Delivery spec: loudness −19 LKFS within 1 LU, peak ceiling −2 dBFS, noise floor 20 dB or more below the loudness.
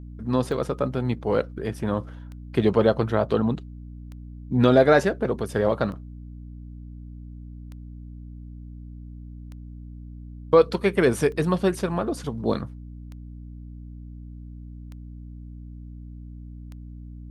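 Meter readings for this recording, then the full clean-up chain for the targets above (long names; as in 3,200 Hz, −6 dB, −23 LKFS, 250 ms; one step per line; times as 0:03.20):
number of clicks 10; mains hum 60 Hz; hum harmonics up to 300 Hz; level of the hum −37 dBFS; integrated loudness −23.0 LKFS; sample peak −5.0 dBFS; target loudness −19.0 LKFS
→ click removal
hum removal 60 Hz, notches 5
level +4 dB
brickwall limiter −2 dBFS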